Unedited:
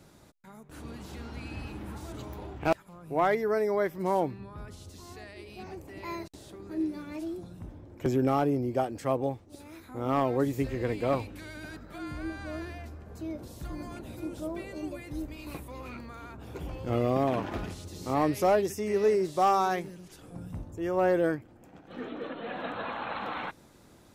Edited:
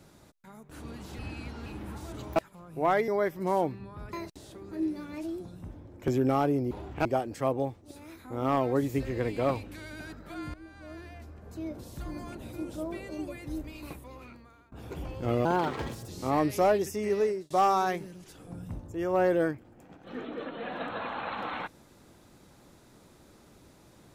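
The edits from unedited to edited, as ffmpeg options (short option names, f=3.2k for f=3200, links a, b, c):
-filter_complex "[0:a]asplit=13[a][b][c][d][e][f][g][h][i][j][k][l][m];[a]atrim=end=1.192[n];[b]atrim=start=1.188:end=1.662,asetpts=PTS-STARTPTS,areverse[o];[c]atrim=start=1.658:end=2.362[p];[d]atrim=start=2.698:end=3.422[q];[e]atrim=start=3.668:end=4.722[r];[f]atrim=start=6.108:end=8.692[s];[g]atrim=start=2.358:end=2.702[t];[h]atrim=start=8.688:end=12.18,asetpts=PTS-STARTPTS,afade=t=out:st=3.488:d=0.004:c=hsin:silence=0.16788[u];[i]atrim=start=12.18:end=16.36,asetpts=PTS-STARTPTS,afade=t=in:d=1.15:silence=0.16788,afade=t=out:st=3.11:d=1.07:silence=0.0794328[v];[j]atrim=start=16.36:end=17.094,asetpts=PTS-STARTPTS,afade=t=in:d=0.004:c=hsin:silence=0.0794328[w];[k]atrim=start=17.09:end=17.92,asetpts=PTS-STARTPTS,asetrate=57771,aresample=44100,atrim=end_sample=27941,asetpts=PTS-STARTPTS[x];[l]atrim=start=17.916:end=19.34,asetpts=PTS-STARTPTS,afade=t=out:st=0.924:d=0.5:c=qsin[y];[m]atrim=start=19.34,asetpts=PTS-STARTPTS,afade=t=in:d=0.004:c=hsin[z];[n][o]acrossfade=d=0.004:c1=hsin:c2=hsin[aa];[aa][p]acrossfade=d=0.004:c1=hsin:c2=hsin[ab];[ab][q]acrossfade=d=0.004:c1=hsin:c2=hsin[ac];[ac][r]acrossfade=d=0.004:c1=hsin:c2=hsin[ad];[ad][s]acrossfade=d=0.004:c1=hsin:c2=hsin[ae];[ae][t]acrossfade=d=0.004:c1=hsin:c2=hsin[af];[u][v][w]concat=n=3:v=0:a=1[ag];[af][ag]acrossfade=d=0.004:c1=hsin:c2=hsin[ah];[ah][x]acrossfade=d=0.004:c1=hsin:c2=hsin[ai];[y][z]concat=n=2:v=0:a=1[aj];[ai][aj]acrossfade=d=0.004:c1=hsin:c2=hsin"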